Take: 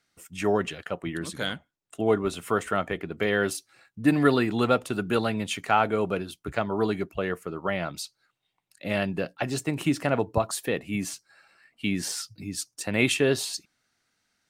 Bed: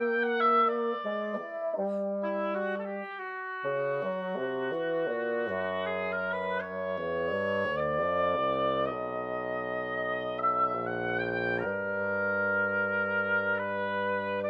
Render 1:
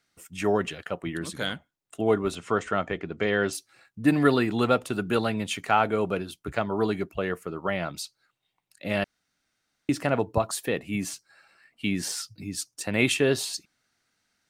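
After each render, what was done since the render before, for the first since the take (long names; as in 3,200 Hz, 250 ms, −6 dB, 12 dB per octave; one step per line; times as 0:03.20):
0:02.35–0:03.53: Chebyshev low-pass filter 6,800 Hz, order 3
0:09.04–0:09.89: fill with room tone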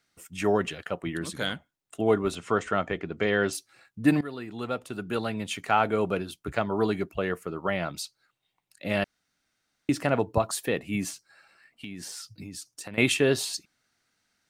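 0:04.21–0:06.00: fade in, from −20 dB
0:11.10–0:12.98: downward compressor, threshold −36 dBFS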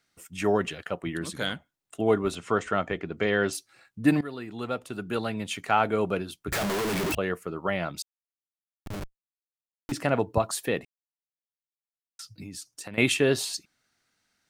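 0:06.52–0:07.15: sign of each sample alone
0:08.02–0:09.92: comparator with hysteresis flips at −24.5 dBFS
0:10.85–0:12.19: silence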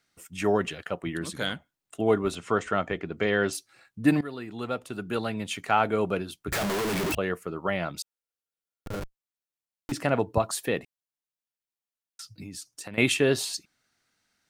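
0:07.95–0:09.00: hollow resonant body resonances 490/1,400 Hz, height 9 dB → 13 dB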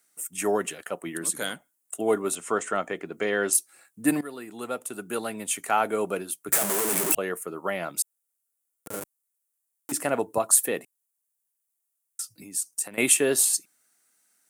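high-pass filter 250 Hz 12 dB per octave
high shelf with overshoot 6,400 Hz +14 dB, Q 1.5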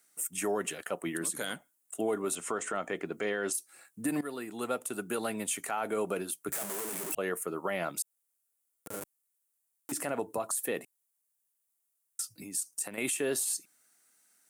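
downward compressor 2 to 1, threshold −27 dBFS, peak gain reduction 7.5 dB
brickwall limiter −22 dBFS, peak gain reduction 10.5 dB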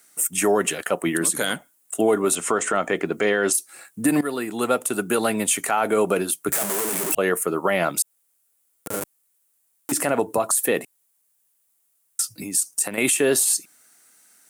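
level +12 dB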